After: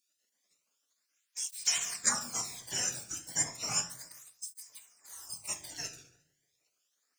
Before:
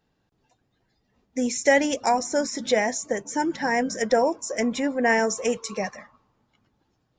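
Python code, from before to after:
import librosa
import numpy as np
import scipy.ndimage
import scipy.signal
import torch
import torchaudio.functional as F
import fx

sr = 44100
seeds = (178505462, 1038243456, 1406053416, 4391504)

p1 = fx.notch(x, sr, hz=510.0, q=12.0)
p2 = fx.spec_box(p1, sr, start_s=3.84, length_s=1.64, low_hz=230.0, high_hz=4800.0, gain_db=-25)
p3 = fx.graphic_eq(p2, sr, hz=(125, 250, 500, 1000, 4000, 8000), db=(9, -11, -3, 9, -7, 7))
p4 = np.sign(p3) * np.maximum(np.abs(p3) - 10.0 ** (-40.0 / 20.0), 0.0)
p5 = p3 + (p4 * 10.0 ** (-9.0 / 20.0))
p6 = fx.spec_gate(p5, sr, threshold_db=-25, keep='weak')
p7 = fx.bass_treble(p6, sr, bass_db=14, treble_db=12)
p8 = p7 + fx.echo_feedback(p7, sr, ms=71, feedback_pct=56, wet_db=-18.5, dry=0)
p9 = fx.room_shoebox(p8, sr, seeds[0], volume_m3=84.0, walls='mixed', distance_m=0.36)
y = fx.flanger_cancel(p9, sr, hz=0.33, depth_ms=1.0)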